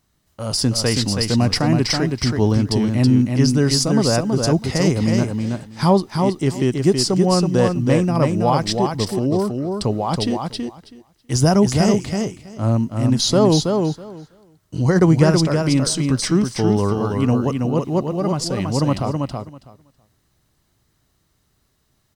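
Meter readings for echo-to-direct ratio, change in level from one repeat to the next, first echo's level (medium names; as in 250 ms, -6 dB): -4.5 dB, -16.5 dB, -4.5 dB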